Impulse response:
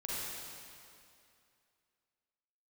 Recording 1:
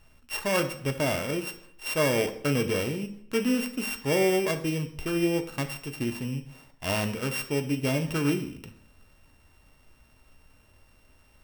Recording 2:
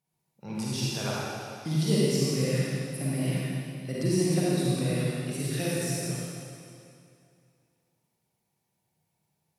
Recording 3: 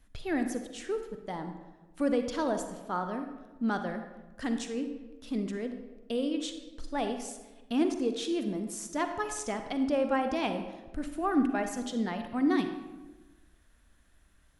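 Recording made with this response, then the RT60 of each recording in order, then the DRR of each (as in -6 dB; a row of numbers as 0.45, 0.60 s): 2; 0.70, 2.5, 1.2 s; 7.0, -7.5, 7.0 dB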